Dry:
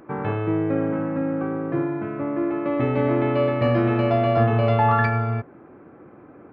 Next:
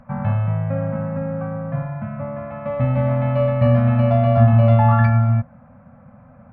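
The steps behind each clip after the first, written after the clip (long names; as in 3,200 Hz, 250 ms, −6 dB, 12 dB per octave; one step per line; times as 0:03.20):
elliptic band-stop filter 240–540 Hz, stop band 40 dB
spectral tilt −3 dB per octave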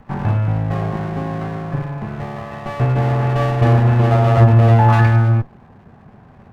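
lower of the sound and its delayed copy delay 1.1 ms
level +3 dB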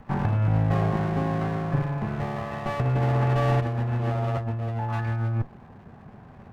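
compressor whose output falls as the input rises −18 dBFS, ratio −1
level −6 dB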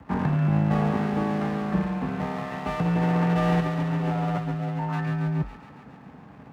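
frequency shifter +44 Hz
delay with a high-pass on its return 139 ms, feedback 71%, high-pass 1,500 Hz, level −6 dB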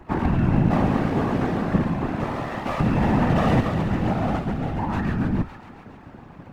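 random phases in short frames
level +3 dB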